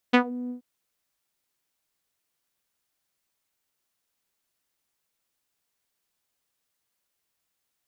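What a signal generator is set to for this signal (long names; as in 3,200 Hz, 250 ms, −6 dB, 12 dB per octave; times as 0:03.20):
subtractive voice saw B3 12 dB per octave, low-pass 320 Hz, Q 2.1, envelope 3.5 octaves, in 0.18 s, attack 14 ms, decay 0.09 s, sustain −20 dB, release 0.11 s, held 0.37 s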